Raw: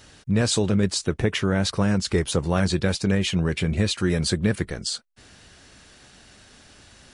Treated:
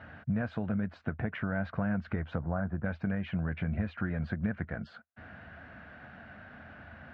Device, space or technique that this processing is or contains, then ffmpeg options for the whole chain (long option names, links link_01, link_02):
bass amplifier: -filter_complex "[0:a]asplit=3[link_01][link_02][link_03];[link_01]afade=type=out:start_time=2.38:duration=0.02[link_04];[link_02]lowpass=frequency=1500:width=0.5412,lowpass=frequency=1500:width=1.3066,afade=type=in:start_time=2.38:duration=0.02,afade=type=out:start_time=2.84:duration=0.02[link_05];[link_03]afade=type=in:start_time=2.84:duration=0.02[link_06];[link_04][link_05][link_06]amix=inputs=3:normalize=0,acompressor=threshold=-33dB:ratio=5,highpass=77,equalizer=frequency=81:width_type=q:width=4:gain=9,equalizer=frequency=150:width_type=q:width=4:gain=4,equalizer=frequency=220:width_type=q:width=4:gain=6,equalizer=frequency=390:width_type=q:width=4:gain=-9,equalizer=frequency=680:width_type=q:width=4:gain=9,equalizer=frequency=1500:width_type=q:width=4:gain=9,lowpass=frequency=2200:width=0.5412,lowpass=frequency=2200:width=1.3066"